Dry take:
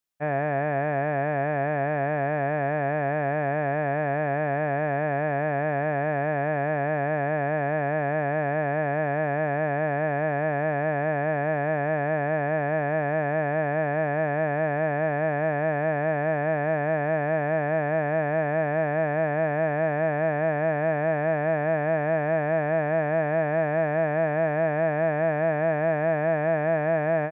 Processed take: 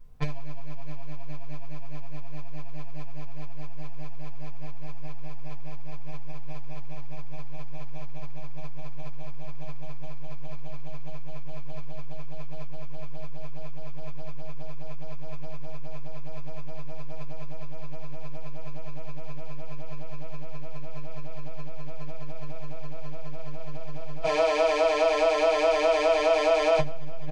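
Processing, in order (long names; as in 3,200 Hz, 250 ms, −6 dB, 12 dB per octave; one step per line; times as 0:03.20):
stylus tracing distortion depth 0.26 ms
0:24.22–0:26.79: Chebyshev high-pass filter 310 Hz, order 8
comb filter 6.1 ms, depth 91%
brickwall limiter −19 dBFS, peak gain reduction 10.5 dB
background noise brown −62 dBFS
convolution reverb RT60 0.20 s, pre-delay 4 ms, DRR −3.5 dB
saturating transformer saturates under 64 Hz
level −3 dB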